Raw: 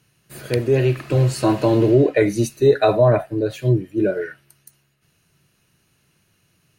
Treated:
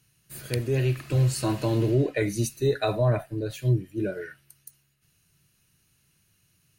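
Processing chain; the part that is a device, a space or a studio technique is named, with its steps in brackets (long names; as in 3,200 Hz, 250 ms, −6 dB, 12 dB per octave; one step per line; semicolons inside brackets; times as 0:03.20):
smiley-face EQ (low-shelf EQ 120 Hz +6 dB; parametric band 530 Hz −5.5 dB 2.5 octaves; high-shelf EQ 5,600 Hz +7.5 dB)
level −6 dB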